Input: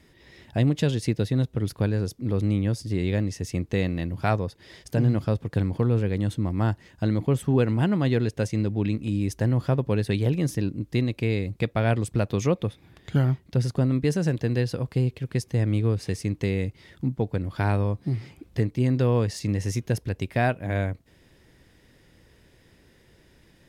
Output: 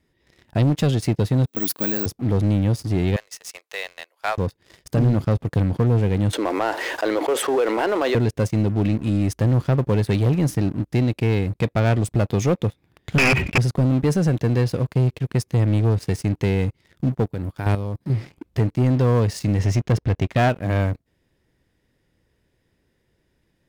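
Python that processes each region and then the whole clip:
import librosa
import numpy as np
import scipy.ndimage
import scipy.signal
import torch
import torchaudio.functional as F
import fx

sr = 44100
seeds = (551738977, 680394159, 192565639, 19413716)

y = fx.chain(x, sr, fx.highpass_res(hz=250.0, q=2.9),
    fx.tilt_shelf(db=-9.0, hz=1400.0),
    fx.resample_bad(factor=2, down='none', up='zero_stuff'), at=(1.47, 2.06))
y = fx.chain(y, sr, fx.bessel_highpass(hz=940.0, order=8),
    fx.high_shelf(hz=4900.0, db=3.0), at=(3.16, 4.38))
y = fx.chain(y, sr, fx.cheby2_highpass(hz=160.0, order=4, stop_db=50),
    fx.high_shelf(hz=5400.0, db=-9.5),
    fx.env_flatten(amount_pct=70), at=(6.33, 8.15))
y = fx.chain(y, sr, fx.overflow_wrap(gain_db=19.0),
    fx.lowpass_res(hz=2500.0, q=14.0),
    fx.sustainer(db_per_s=110.0), at=(13.18, 13.58))
y = fx.chain(y, sr, fx.high_shelf(hz=9200.0, db=11.5),
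    fx.level_steps(step_db=11), at=(17.25, 18.1))
y = fx.chain(y, sr, fx.air_absorb(metres=100.0),
    fx.leveller(passes=1), at=(19.59, 20.49))
y = fx.peak_eq(y, sr, hz=4600.0, db=-3.0, octaves=2.8)
y = fx.leveller(y, sr, passes=3)
y = y * librosa.db_to_amplitude(-4.5)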